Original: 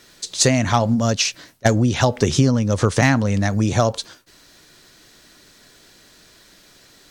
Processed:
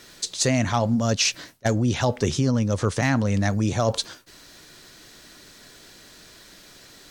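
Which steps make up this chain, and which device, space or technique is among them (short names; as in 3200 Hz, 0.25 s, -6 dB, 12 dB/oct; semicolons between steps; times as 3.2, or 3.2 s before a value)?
compression on the reversed sound (reverse; compressor 6:1, threshold -20 dBFS, peak gain reduction 10.5 dB; reverse); gain +2 dB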